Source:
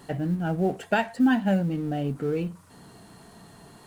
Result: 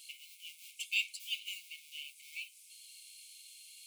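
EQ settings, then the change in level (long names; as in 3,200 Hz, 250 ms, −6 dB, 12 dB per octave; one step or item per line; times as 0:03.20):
linear-phase brick-wall high-pass 2,100 Hz
parametric band 2,800 Hz +3 dB 0.65 octaves
high-shelf EQ 4,700 Hz +6 dB
0.0 dB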